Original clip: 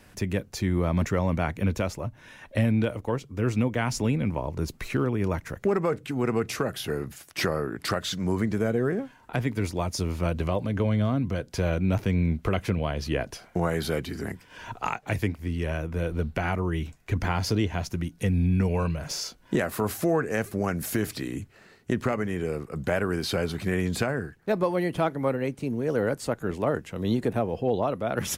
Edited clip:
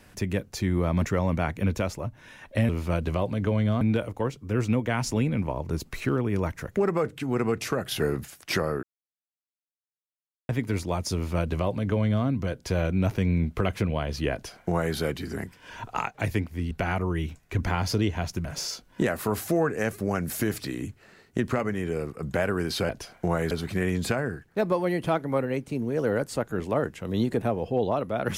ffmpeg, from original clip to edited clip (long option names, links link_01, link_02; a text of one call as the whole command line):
ffmpeg -i in.wav -filter_complex "[0:a]asplit=11[link_01][link_02][link_03][link_04][link_05][link_06][link_07][link_08][link_09][link_10][link_11];[link_01]atrim=end=2.692[link_12];[link_02]atrim=start=10.018:end=11.142[link_13];[link_03]atrim=start=2.688:end=6.792[link_14];[link_04]atrim=start=6.788:end=7.132,asetpts=PTS-STARTPTS,volume=4dB[link_15];[link_05]atrim=start=7.128:end=7.71,asetpts=PTS-STARTPTS,afade=type=out:start_time=0.578:duration=0.004:curve=hsin[link_16];[link_06]atrim=start=7.71:end=9.37,asetpts=PTS-STARTPTS,volume=0[link_17];[link_07]atrim=start=9.37:end=15.592,asetpts=PTS-STARTPTS,afade=type=in:duration=0.004:curve=hsin[link_18];[link_08]atrim=start=16.278:end=18.022[link_19];[link_09]atrim=start=18.978:end=23.422[link_20];[link_10]atrim=start=13.208:end=13.832[link_21];[link_11]atrim=start=23.418[link_22];[link_12][link_13]acrossfade=duration=0.004:curve1=hsin:curve2=hsin[link_23];[link_23][link_14]acrossfade=duration=0.004:curve1=hsin:curve2=hsin[link_24];[link_24][link_15]acrossfade=duration=0.004:curve1=hsin:curve2=hsin[link_25];[link_16][link_17][link_18]concat=n=3:v=0:a=1[link_26];[link_25][link_26]acrossfade=duration=0.004:curve1=hsin:curve2=hsin[link_27];[link_27][link_19]acrossfade=duration=0.004:curve1=hsin:curve2=hsin[link_28];[link_28][link_20]acrossfade=duration=0.004:curve1=hsin:curve2=hsin[link_29];[link_29][link_21]acrossfade=duration=0.004:curve1=hsin:curve2=hsin[link_30];[link_30][link_22]acrossfade=duration=0.004:curve1=hsin:curve2=hsin" out.wav